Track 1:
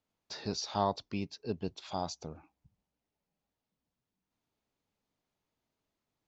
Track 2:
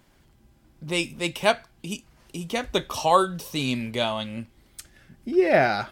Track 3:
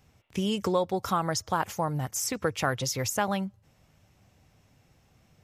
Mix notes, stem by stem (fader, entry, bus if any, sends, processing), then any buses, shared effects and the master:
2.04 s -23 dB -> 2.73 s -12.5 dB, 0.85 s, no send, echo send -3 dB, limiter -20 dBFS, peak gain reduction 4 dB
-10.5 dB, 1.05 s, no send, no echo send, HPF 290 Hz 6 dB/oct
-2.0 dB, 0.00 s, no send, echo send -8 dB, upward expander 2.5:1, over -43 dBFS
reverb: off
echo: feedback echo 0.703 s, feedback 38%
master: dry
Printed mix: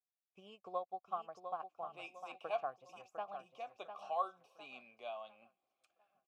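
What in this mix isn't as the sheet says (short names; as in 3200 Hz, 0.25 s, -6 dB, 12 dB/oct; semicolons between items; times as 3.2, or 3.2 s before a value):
stem 1: muted; master: extra vowel filter a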